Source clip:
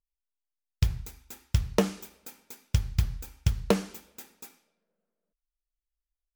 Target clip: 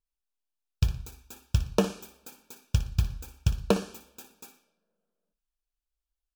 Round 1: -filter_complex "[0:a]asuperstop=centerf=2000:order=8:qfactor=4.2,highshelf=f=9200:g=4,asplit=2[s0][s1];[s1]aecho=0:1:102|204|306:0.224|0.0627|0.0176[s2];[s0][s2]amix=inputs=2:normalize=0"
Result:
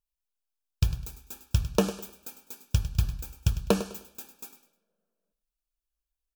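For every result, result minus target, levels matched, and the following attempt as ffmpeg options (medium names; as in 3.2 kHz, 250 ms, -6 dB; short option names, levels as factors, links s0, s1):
echo 43 ms late; 8 kHz band +2.5 dB
-filter_complex "[0:a]asuperstop=centerf=2000:order=8:qfactor=4.2,highshelf=f=9200:g=4,asplit=2[s0][s1];[s1]aecho=0:1:59|118|177:0.224|0.0627|0.0176[s2];[s0][s2]amix=inputs=2:normalize=0"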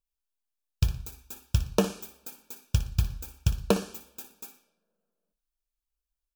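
8 kHz band +2.5 dB
-filter_complex "[0:a]asuperstop=centerf=2000:order=8:qfactor=4.2,highshelf=f=9200:g=-3.5,asplit=2[s0][s1];[s1]aecho=0:1:59|118|177:0.224|0.0627|0.0176[s2];[s0][s2]amix=inputs=2:normalize=0"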